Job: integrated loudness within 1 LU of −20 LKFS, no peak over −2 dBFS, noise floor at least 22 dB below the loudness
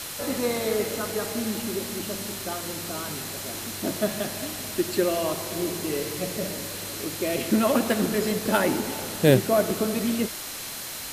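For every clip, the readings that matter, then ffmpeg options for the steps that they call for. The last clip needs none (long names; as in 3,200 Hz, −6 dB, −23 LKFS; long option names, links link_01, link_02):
interfering tone 4,100 Hz; level of the tone −46 dBFS; background noise floor −36 dBFS; target noise floor −49 dBFS; integrated loudness −26.5 LKFS; sample peak −4.5 dBFS; target loudness −20.0 LKFS
→ -af "bandreject=frequency=4100:width=30"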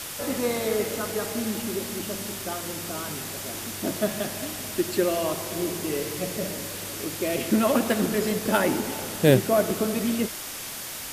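interfering tone none found; background noise floor −36 dBFS; target noise floor −49 dBFS
→ -af "afftdn=noise_reduction=13:noise_floor=-36"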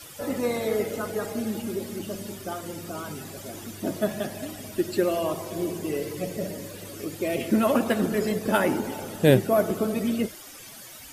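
background noise floor −44 dBFS; target noise floor −50 dBFS
→ -af "afftdn=noise_reduction=6:noise_floor=-44"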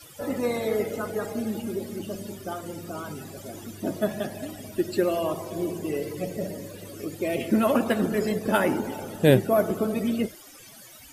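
background noise floor −48 dBFS; target noise floor −50 dBFS
→ -af "afftdn=noise_reduction=6:noise_floor=-48"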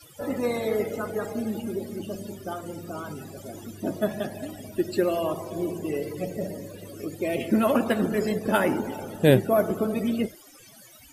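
background noise floor −51 dBFS; integrated loudness −27.5 LKFS; sample peak −5.0 dBFS; target loudness −20.0 LKFS
→ -af "volume=7.5dB,alimiter=limit=-2dB:level=0:latency=1"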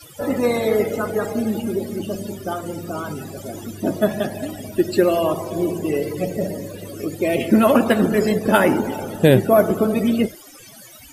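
integrated loudness −20.5 LKFS; sample peak −2.0 dBFS; background noise floor −43 dBFS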